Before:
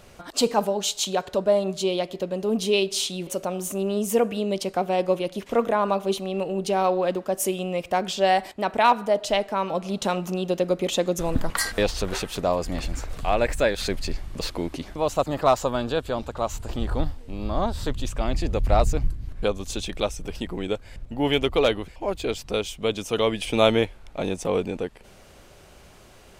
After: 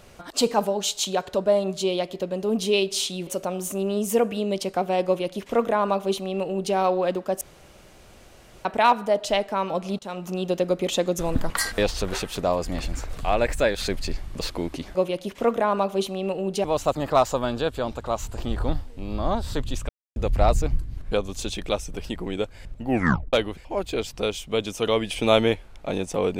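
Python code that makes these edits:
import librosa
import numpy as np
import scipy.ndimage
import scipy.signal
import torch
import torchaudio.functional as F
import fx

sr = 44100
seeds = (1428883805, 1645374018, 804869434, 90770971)

y = fx.edit(x, sr, fx.duplicate(start_s=5.06, length_s=1.69, to_s=14.95),
    fx.room_tone_fill(start_s=7.41, length_s=1.24),
    fx.fade_in_from(start_s=9.99, length_s=0.43, floor_db=-18.5),
    fx.silence(start_s=18.2, length_s=0.27),
    fx.tape_stop(start_s=21.18, length_s=0.46), tone=tone)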